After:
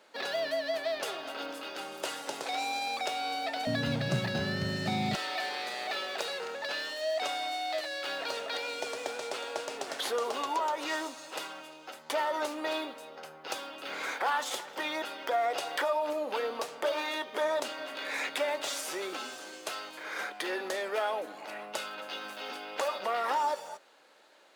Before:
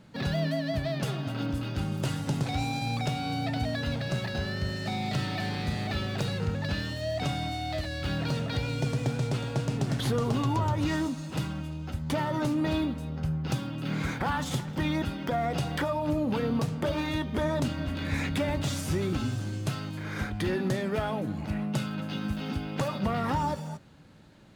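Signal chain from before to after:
high-pass filter 430 Hz 24 dB per octave, from 0:03.67 120 Hz, from 0:05.15 460 Hz
level +1.5 dB

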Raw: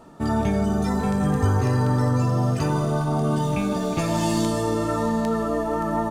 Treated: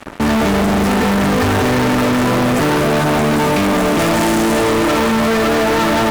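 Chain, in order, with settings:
graphic EQ with 10 bands 125 Hz −9 dB, 250 Hz +6 dB, 500 Hz +4 dB, 2,000 Hz +8 dB, 4,000 Hz −10 dB
fuzz pedal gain 37 dB, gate −41 dBFS

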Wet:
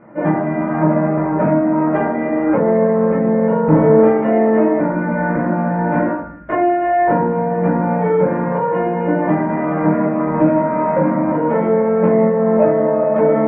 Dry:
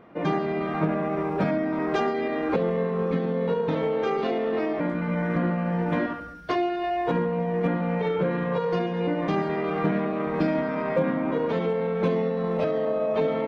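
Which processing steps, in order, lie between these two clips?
0:03.67–0:04.07: low-shelf EQ 420 Hz +11 dB
soft clipping −17 dBFS, distortion −18 dB
Butterworth low-pass 2,200 Hz 36 dB per octave
convolution reverb RT60 0.40 s, pre-delay 3 ms, DRR −4 dB
dynamic equaliser 730 Hz, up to +4 dB, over −30 dBFS, Q 0.73
level +2 dB

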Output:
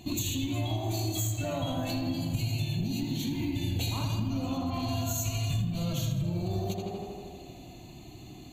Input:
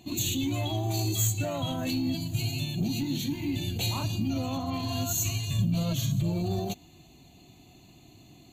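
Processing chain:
tape delay 81 ms, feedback 84%, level −4 dB, low-pass 3,000 Hz
downward compressor, threshold −33 dBFS, peak gain reduction 11.5 dB
low-shelf EQ 62 Hz +11.5 dB
level +3.5 dB

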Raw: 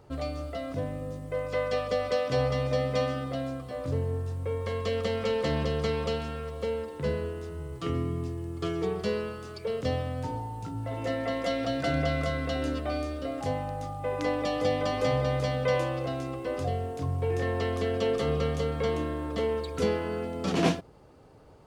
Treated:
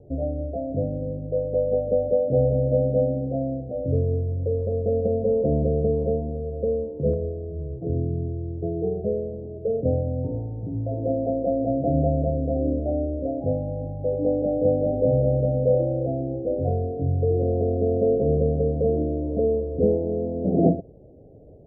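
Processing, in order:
Butterworth low-pass 690 Hz 72 dB per octave
0:07.13–0:09.33: dynamic equaliser 270 Hz, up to −6 dB, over −45 dBFS, Q 1.2
level +7 dB

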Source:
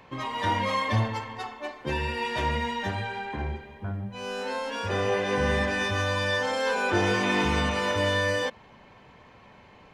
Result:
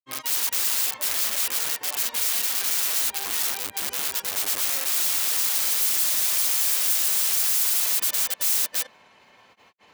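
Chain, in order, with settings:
granular cloud 126 ms, grains 18 per second, spray 672 ms
wrap-around overflow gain 30 dB
RIAA equalisation recording

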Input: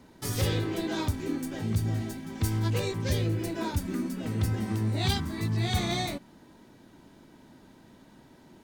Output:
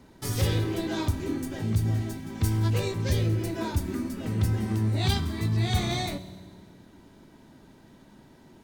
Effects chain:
low-shelf EQ 110 Hz +4.5 dB
convolution reverb RT60 1.7 s, pre-delay 3 ms, DRR 12 dB

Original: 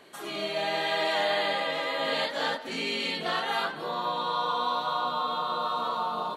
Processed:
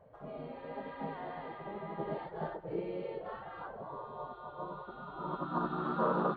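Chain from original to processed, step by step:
low-pass filter sweep 280 Hz → 770 Hz, 0:04.64–0:06.14
gate on every frequency bin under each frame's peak −15 dB weak
highs frequency-modulated by the lows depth 0.11 ms
level +11 dB

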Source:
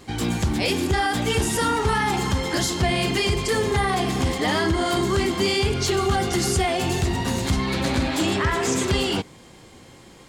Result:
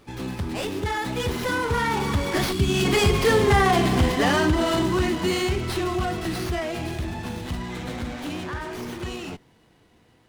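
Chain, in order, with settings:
source passing by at 0:03.48, 29 m/s, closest 30 metres
time-frequency box erased 0:02.53–0:02.85, 430–2,300 Hz
windowed peak hold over 5 samples
level +4 dB

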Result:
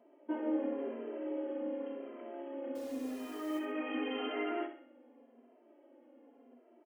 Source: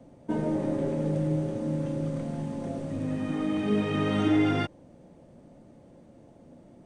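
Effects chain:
brick-wall band-pass 230–3,300 Hz
0:02.75–0:03.59: bit-depth reduction 8 bits, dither none
on a send: flutter between parallel walls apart 10.9 metres, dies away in 0.47 s
on the sum: barber-pole flanger 2.6 ms −0.89 Hz
level −4 dB

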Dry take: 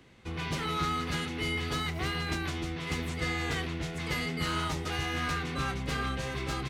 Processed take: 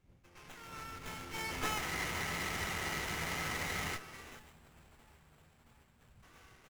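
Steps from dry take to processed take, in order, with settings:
wind on the microphone 86 Hz −30 dBFS
source passing by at 0:01.74, 19 m/s, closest 4.2 metres
spectral tilt +3 dB per octave
delay that swaps between a low-pass and a high-pass 336 ms, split 1,600 Hz, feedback 79%, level −3.5 dB
gain on a spectral selection 0:04.39–0:06.23, 240–7,100 Hz −29 dB
high-shelf EQ 5,100 Hz +10 dB
single-tap delay 132 ms −12.5 dB
frozen spectrum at 0:01.82, 2.13 s
windowed peak hold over 9 samples
level −5 dB

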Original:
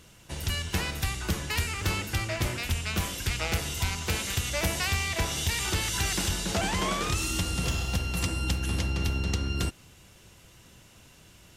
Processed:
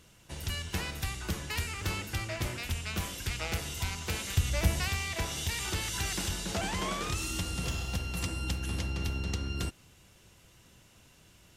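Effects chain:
0:04.37–0:04.88: low-shelf EQ 160 Hz +12 dB
level −5 dB

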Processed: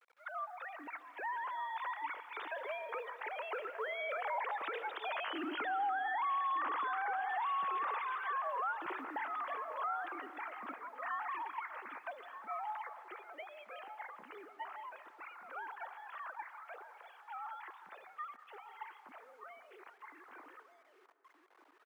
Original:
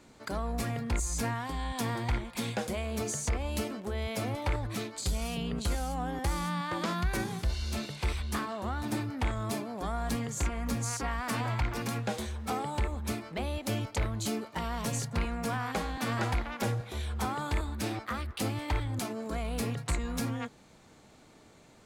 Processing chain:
three sine waves on the formant tracks
source passing by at 0:05.92, 6 m/s, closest 1.5 metres
slap from a distant wall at 210 metres, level −9 dB
log-companded quantiser 8 bits
low shelf with overshoot 780 Hz −8 dB, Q 1.5
downward compressor 4 to 1, threshold −49 dBFS, peak gain reduction 16 dB
dense smooth reverb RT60 2.5 s, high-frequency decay 0.4×, pre-delay 110 ms, DRR 14 dB
brickwall limiter −46.5 dBFS, peak gain reduction 6.5 dB
three-way crossover with the lows and the highs turned down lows −23 dB, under 270 Hz, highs −15 dB, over 2,300 Hz
level +18 dB

